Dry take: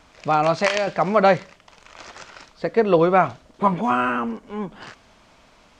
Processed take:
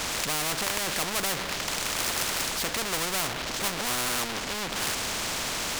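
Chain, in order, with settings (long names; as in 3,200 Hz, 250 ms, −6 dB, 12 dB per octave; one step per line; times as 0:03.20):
treble cut that deepens with the level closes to 1,300 Hz, closed at −16.5 dBFS
power curve on the samples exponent 0.5
every bin compressed towards the loudest bin 4 to 1
level −6.5 dB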